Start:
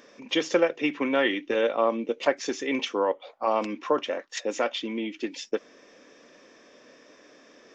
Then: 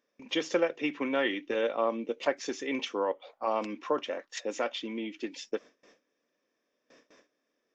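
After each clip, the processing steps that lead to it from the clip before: gate with hold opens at -42 dBFS; trim -5 dB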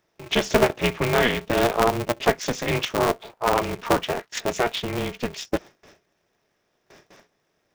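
polarity switched at an audio rate 120 Hz; trim +8.5 dB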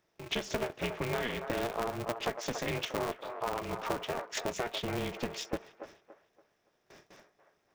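compression 6:1, threshold -26 dBFS, peak gain reduction 12.5 dB; feedback echo behind a band-pass 284 ms, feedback 33%, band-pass 870 Hz, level -6.5 dB; trim -5 dB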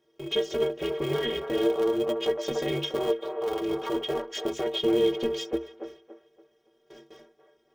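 peak limiter -25.5 dBFS, peak gain reduction 7.5 dB; inharmonic resonator 69 Hz, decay 0.33 s, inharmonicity 0.03; small resonant body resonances 400/3200 Hz, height 17 dB, ringing for 25 ms; trim +7.5 dB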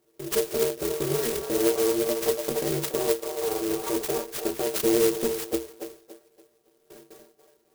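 sampling jitter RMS 0.12 ms; trim +1.5 dB

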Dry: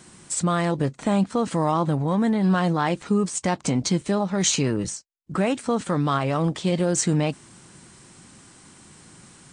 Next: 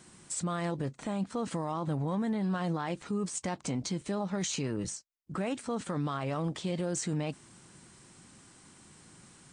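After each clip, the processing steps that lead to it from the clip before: peak limiter -18 dBFS, peak gain reduction 9.5 dB; trim -7 dB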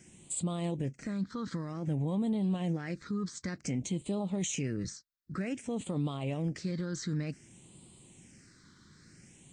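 phase shifter stages 6, 0.54 Hz, lowest notch 700–1600 Hz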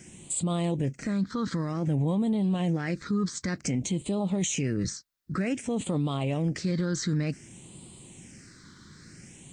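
peak limiter -28.5 dBFS, peak gain reduction 4.5 dB; trim +8 dB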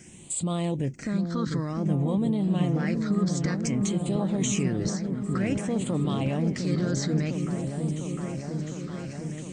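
delay with an opening low-pass 705 ms, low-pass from 400 Hz, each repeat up 1 oct, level -3 dB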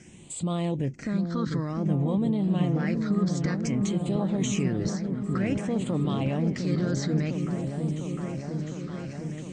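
distance through air 64 m

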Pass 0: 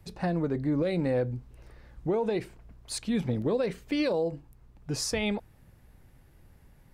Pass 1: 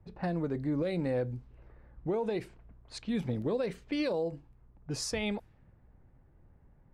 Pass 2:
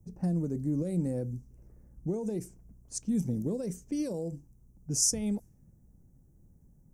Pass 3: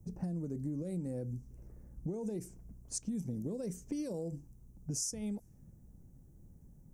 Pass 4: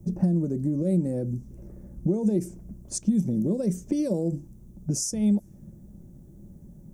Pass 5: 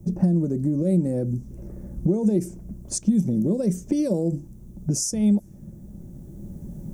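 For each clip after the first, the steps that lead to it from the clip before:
level-controlled noise filter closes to 1.1 kHz, open at -27 dBFS; trim -4 dB
FFT filter 110 Hz 0 dB, 180 Hz +6 dB, 1.1 kHz -14 dB, 1.8 kHz -16 dB, 4.1 kHz -16 dB, 5.9 kHz +14 dB
compression 6:1, threshold -38 dBFS, peak gain reduction 14.5 dB; trim +2.5 dB
small resonant body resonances 200/340/570/3500 Hz, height 10 dB, ringing for 45 ms; trim +7 dB
recorder AGC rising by 5.6 dB/s; trim +3 dB

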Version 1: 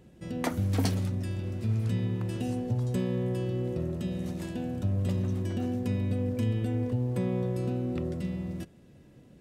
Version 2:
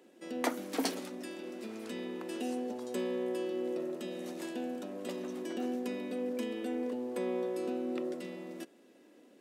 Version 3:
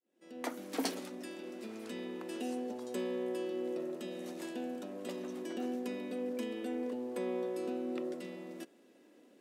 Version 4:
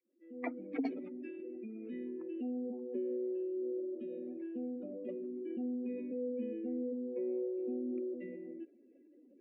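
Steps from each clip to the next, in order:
steep high-pass 260 Hz 36 dB/octave
fade-in on the opening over 0.81 s; trim -2 dB
spectral contrast enhancement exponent 2.6; resonant low-pass 2.3 kHz, resonance Q 11

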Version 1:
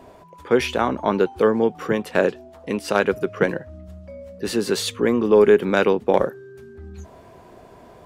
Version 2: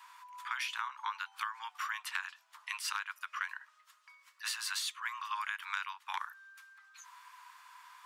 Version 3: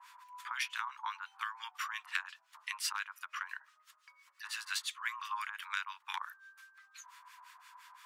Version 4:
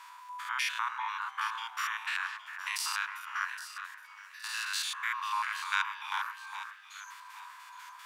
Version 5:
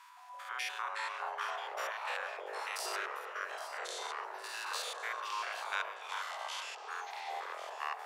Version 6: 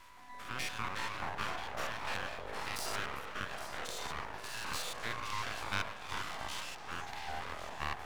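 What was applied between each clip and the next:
steep high-pass 970 Hz 72 dB/octave; compression 8:1, threshold -34 dBFS, peak gain reduction 16 dB
harmonic tremolo 5.8 Hz, depth 100%, crossover 1.2 kHz; trim +4 dB
spectrogram pixelated in time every 100 ms; echo whose repeats swap between lows and highs 409 ms, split 2 kHz, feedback 55%, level -7 dB; trim +8.5 dB
ever faster or slower copies 167 ms, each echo -5 st, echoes 3; trim -6.5 dB
half-wave rectifier; trim +4 dB

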